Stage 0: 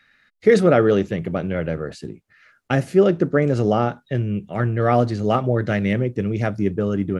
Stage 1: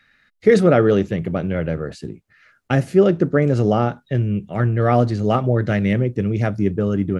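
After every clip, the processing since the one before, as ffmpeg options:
ffmpeg -i in.wav -af "lowshelf=frequency=200:gain=4.5" out.wav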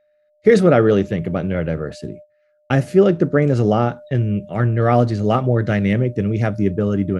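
ffmpeg -i in.wav -af "aeval=exprs='val(0)+0.0112*sin(2*PI*600*n/s)':channel_layout=same,agate=range=-21dB:threshold=-38dB:ratio=16:detection=peak,volume=1dB" out.wav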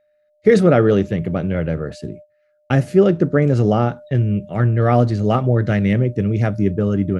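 ffmpeg -i in.wav -af "equalizer=frequency=80:width_type=o:width=3:gain=3,volume=-1dB" out.wav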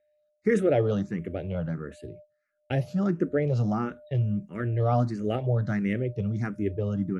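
ffmpeg -i in.wav -filter_complex "[0:a]asplit=2[link_01][link_02];[link_02]afreqshift=1.5[link_03];[link_01][link_03]amix=inputs=2:normalize=1,volume=-7.5dB" out.wav

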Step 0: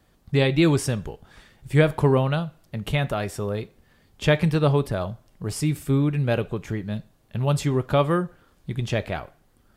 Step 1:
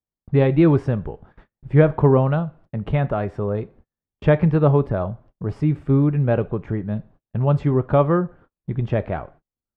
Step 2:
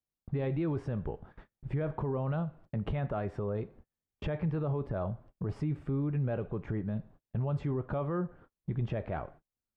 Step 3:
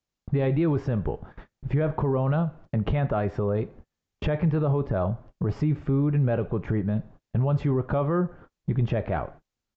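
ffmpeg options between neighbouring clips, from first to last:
ffmpeg -i in.wav -af "lowpass=1300,agate=range=-37dB:threshold=-50dB:ratio=16:detection=peak,volume=4dB" out.wav
ffmpeg -i in.wav -af "acompressor=threshold=-27dB:ratio=2,alimiter=limit=-21dB:level=0:latency=1:release=10,volume=-3.5dB" out.wav
ffmpeg -i in.wav -af "aresample=16000,aresample=44100,volume=8.5dB" out.wav

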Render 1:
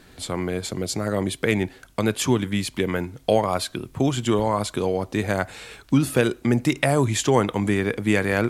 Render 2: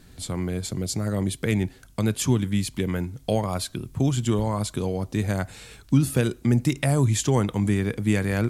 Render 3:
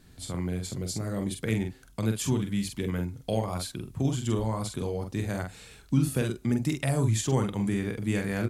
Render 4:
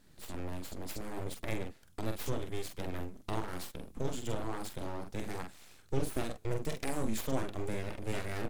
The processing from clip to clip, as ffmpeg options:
ffmpeg -i in.wav -af "bass=frequency=250:gain=11,treble=frequency=4000:gain=7,volume=-7dB" out.wav
ffmpeg -i in.wav -filter_complex "[0:a]asplit=2[link_01][link_02];[link_02]adelay=45,volume=-5dB[link_03];[link_01][link_03]amix=inputs=2:normalize=0,volume=-6dB" out.wav
ffmpeg -i in.wav -af "aeval=exprs='abs(val(0))':channel_layout=same,volume=-5.5dB" out.wav

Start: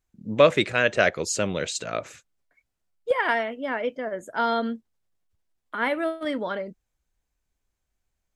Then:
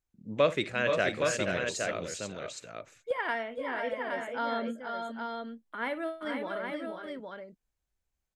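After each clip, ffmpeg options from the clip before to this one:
ffmpeg -i in.wav -af "aecho=1:1:57|473|496|817:0.15|0.398|0.398|0.562,volume=-8.5dB" out.wav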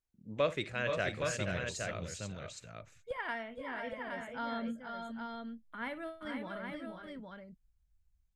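ffmpeg -i in.wav -af "asubboost=boost=9.5:cutoff=130,volume=-5.5dB" out.wav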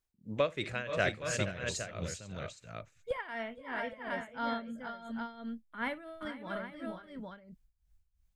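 ffmpeg -i in.wav -af "tremolo=f=2.9:d=0.79,volume=5dB" out.wav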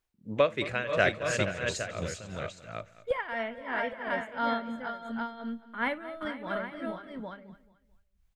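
ffmpeg -i in.wav -af "bass=frequency=250:gain=-4,treble=frequency=4000:gain=-6,aecho=1:1:218|436|654:0.133|0.0453|0.0154,volume=6dB" out.wav

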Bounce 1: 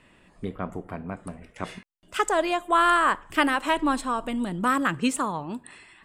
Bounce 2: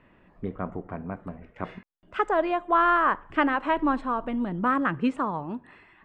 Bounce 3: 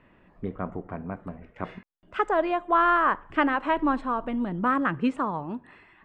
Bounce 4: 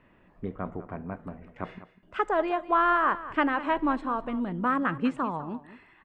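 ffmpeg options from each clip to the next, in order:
ffmpeg -i in.wav -af "lowpass=1800" out.wav
ffmpeg -i in.wav -af anull out.wav
ffmpeg -i in.wav -af "aecho=1:1:199:0.178,volume=-2dB" out.wav

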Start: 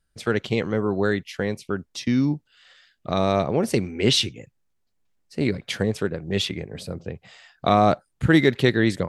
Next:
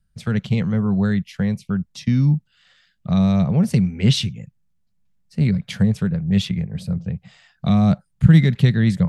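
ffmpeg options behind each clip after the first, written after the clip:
ffmpeg -i in.wav -filter_complex "[0:a]lowshelf=frequency=240:width_type=q:width=3:gain=9.5,acrossover=split=430|2300[link_01][link_02][link_03];[link_02]alimiter=limit=-19.5dB:level=0:latency=1[link_04];[link_01][link_04][link_03]amix=inputs=3:normalize=0,volume=-3dB" out.wav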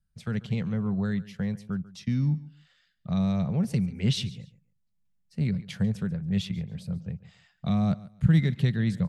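ffmpeg -i in.wav -af "aecho=1:1:141|282:0.112|0.0258,volume=-9dB" out.wav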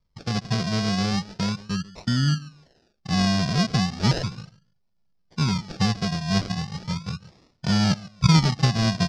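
ffmpeg -i in.wav -af "acrusher=samples=39:mix=1:aa=0.000001:lfo=1:lforange=23.4:lforate=0.36,lowpass=frequency=5100:width_type=q:width=4.7,volume=3.5dB" out.wav

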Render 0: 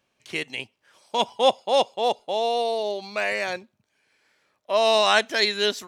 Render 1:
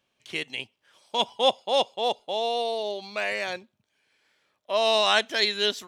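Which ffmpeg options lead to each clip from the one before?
ffmpeg -i in.wav -af "equalizer=frequency=3300:width=3:gain=5.5,volume=-3.5dB" out.wav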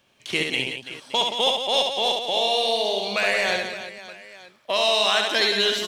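ffmpeg -i in.wav -filter_complex "[0:a]acrossover=split=1600|5900[link_01][link_02][link_03];[link_01]acompressor=threshold=-36dB:ratio=4[link_04];[link_02]acompressor=threshold=-33dB:ratio=4[link_05];[link_03]acompressor=threshold=-48dB:ratio=4[link_06];[link_04][link_05][link_06]amix=inputs=3:normalize=0,asplit=2[link_07][link_08];[link_08]asoftclip=type=hard:threshold=-32.5dB,volume=-12dB[link_09];[link_07][link_09]amix=inputs=2:normalize=0,aecho=1:1:70|175|332.5|568.8|923.1:0.631|0.398|0.251|0.158|0.1,volume=8.5dB" out.wav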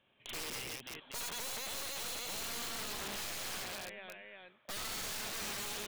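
ffmpeg -i in.wav -af "aeval=exprs='(tanh(25.1*val(0)+0.6)-tanh(0.6))/25.1':channel_layout=same,aresample=8000,aresample=44100,aeval=exprs='(mod(28.2*val(0)+1,2)-1)/28.2':channel_layout=same,volume=-6dB" out.wav

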